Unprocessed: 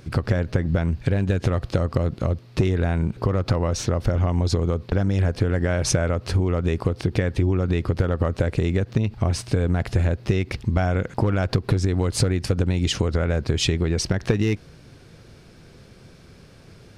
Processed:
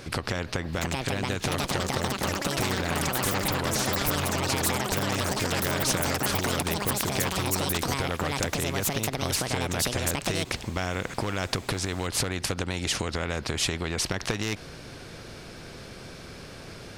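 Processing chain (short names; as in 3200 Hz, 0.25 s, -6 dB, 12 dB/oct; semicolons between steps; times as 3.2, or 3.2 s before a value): echoes that change speed 0.731 s, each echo +7 st, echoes 3; spectral compressor 2:1; gain -2.5 dB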